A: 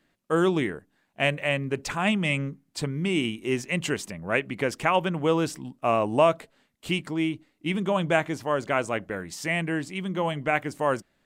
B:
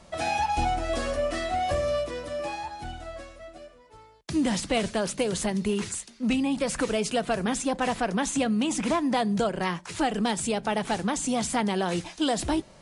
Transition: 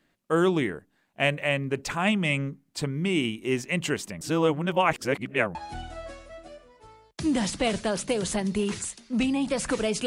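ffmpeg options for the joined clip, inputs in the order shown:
-filter_complex "[0:a]apad=whole_dur=10.06,atrim=end=10.06,asplit=2[a][b];[a]atrim=end=4.212[c];[b]atrim=start=4.208:end=5.552,asetpts=PTS-STARTPTS,areverse[d];[1:a]atrim=start=2.648:end=7.16[e];[c][d]acrossfade=d=0.004:c1=hsin:c2=hsin[f];[f][e]acrossfade=d=0.004:c1=hsin:c2=hsin"

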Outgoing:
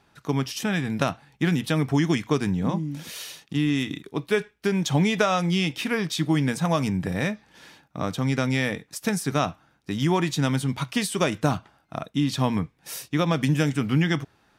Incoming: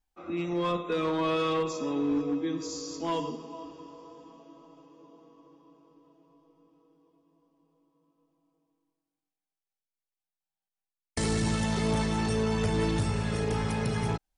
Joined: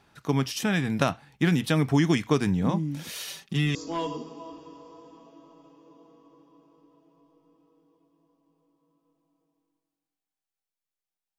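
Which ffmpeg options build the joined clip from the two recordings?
-filter_complex "[0:a]asettb=1/sr,asplit=3[a][b][c];[a]atrim=end=3.274[d];[b]atrim=start=3.27:end=3.75,asetpts=PTS-STARTPTS,afade=t=in:d=0.004:c=qsin,afade=t=out:st=0.476:d=0.004:c=qsin,aecho=1:1:5.2:0.66,atrim=end_sample=21168[e];[c]atrim=start=3.746[f];[d][e]acrossfade=d=0.004:c1=hsin:c2=qsin[g];[g][f]acrossfade=d=0.004:c1=qsin:c2=hsin,apad=whole_dur=11.38,atrim=end=11.38,atrim=end=3.752[h];[1:a]atrim=start=2.878:end=10.51[i];[h][i]acrossfade=d=0.004:c1=hsin:c2=hsin"

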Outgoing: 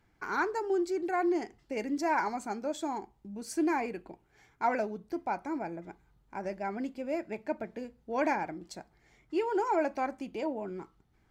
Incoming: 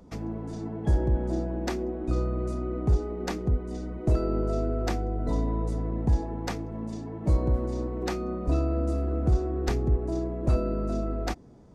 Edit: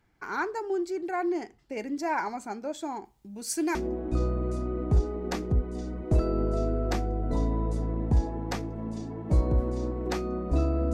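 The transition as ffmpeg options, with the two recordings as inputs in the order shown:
-filter_complex "[0:a]asettb=1/sr,asplit=3[a][b][c];[a]atrim=end=3.054[d];[b]atrim=start=3.05:end=3.75,asetpts=PTS-STARTPTS,afade=t=in:d=0.004:c=qsin,afade=t=out:st=0.696:d=0.004:c=qsin,highshelf=f=3k:g=11.5[e];[c]atrim=start=3.746[f];[d][e]acrossfade=d=0.004:c1=hsin:c2=qsin[g];[g][f]acrossfade=d=0.004:c1=qsin:c2=hsin,apad=whole_dur=10.93,atrim=end=10.93,atrim=end=3.752[h];[1:a]atrim=start=1.708:end=8.89[i];[h][i]acrossfade=d=0.004:c1=hsin:c2=hsin"

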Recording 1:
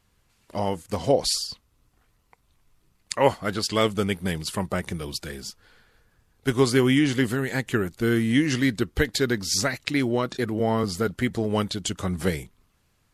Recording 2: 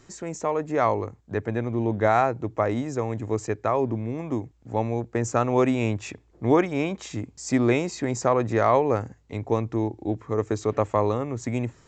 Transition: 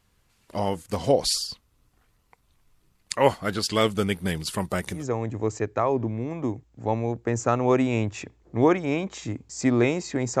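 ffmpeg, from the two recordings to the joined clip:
-filter_complex "[0:a]asettb=1/sr,asplit=3[a][b][c];[a]atrim=end=4.584[d];[b]atrim=start=4.58:end=5.05,asetpts=PTS-STARTPTS,afade=t=in:d=0.004:c=qsin,afade=t=out:st=0.466:d=0.004:c=qsin,bass=f=250:g=-1,treble=f=4k:g=4[e];[c]atrim=start=5.046[f];[d][e]acrossfade=d=0.004:c1=hsin:c2=qsin[g];[g][f]acrossfade=d=0.004:c1=qsin:c2=hsin,apad=whole_dur=10.4,atrim=end=10.4,atrim=end=5.05,asetpts=PTS-STARTPTS[h];[1:a]atrim=start=2.79:end=8.28,asetpts=PTS-STARTPTS[i];[h][i]acrossfade=d=0.14:c1=tri:c2=tri"

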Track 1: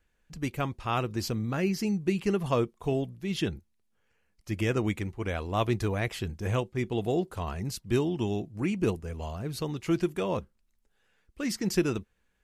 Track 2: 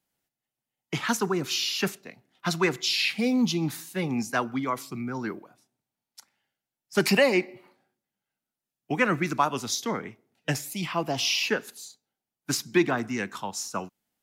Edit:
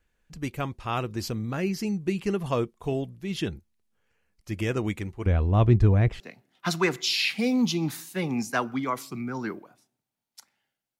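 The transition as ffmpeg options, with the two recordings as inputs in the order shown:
-filter_complex "[0:a]asettb=1/sr,asplit=3[a][b][c];[a]atrim=end=5.264[d];[b]atrim=start=5.26:end=6.2,asetpts=PTS-STARTPTS,afade=t=in:d=0.004:c=qsin,afade=t=out:st=0.936:d=0.004:c=qsin,aemphasis=mode=reproduction:type=riaa[e];[c]atrim=start=6.196[f];[d][e]acrossfade=d=0.004:c1=hsin:c2=qsin[g];[g][f]acrossfade=d=0.004:c1=qsin:c2=hsin,apad=whole_dur=10.99,atrim=end=10.99,atrim=end=6.202[h];[1:a]atrim=start=1.998:end=6.79[i];[h][i]acrossfade=d=0.004:c1=hsin:c2=hsin"

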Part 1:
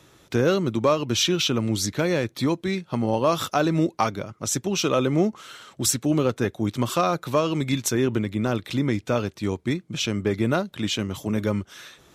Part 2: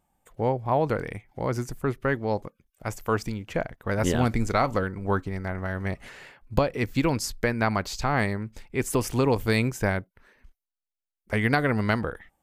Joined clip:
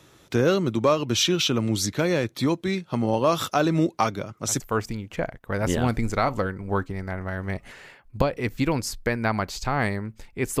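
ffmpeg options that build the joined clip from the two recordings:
-filter_complex "[1:a]asplit=2[a][b];[0:a]apad=whole_dur=10.6,atrim=end=10.6,atrim=end=4.602[c];[b]atrim=start=2.968:end=8.97[d];[a]atrim=start=2.53:end=2.97,asetpts=PTS-STARTPTS,volume=-9.5dB,afade=t=in:d=0.004:c=hsin,afade=t=out:st=0.436:d=0.004:c=hsin,adelay=4160[e];[c][d]acrossfade=d=0.004:c1=hsin:c2=hsin[f];[f][e]amix=inputs=2:normalize=0"

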